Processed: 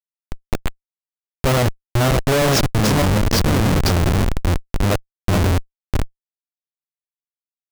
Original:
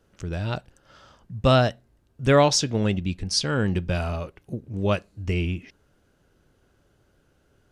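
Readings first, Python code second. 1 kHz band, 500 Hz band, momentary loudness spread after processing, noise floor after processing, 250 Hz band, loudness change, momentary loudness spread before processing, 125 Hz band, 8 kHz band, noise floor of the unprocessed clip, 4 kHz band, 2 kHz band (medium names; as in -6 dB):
+4.5 dB, +2.5 dB, 12 LU, under -85 dBFS, +6.0 dB, +5.5 dB, 15 LU, +7.5 dB, +4.5 dB, -65 dBFS, +4.0 dB, +6.5 dB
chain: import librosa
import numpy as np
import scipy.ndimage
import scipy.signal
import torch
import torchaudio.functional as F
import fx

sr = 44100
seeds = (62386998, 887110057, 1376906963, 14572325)

y = fx.reverse_delay_fb(x, sr, ms=302, feedback_pct=46, wet_db=-2.0)
y = fx.schmitt(y, sr, flips_db=-20.5)
y = y * librosa.db_to_amplitude(8.0)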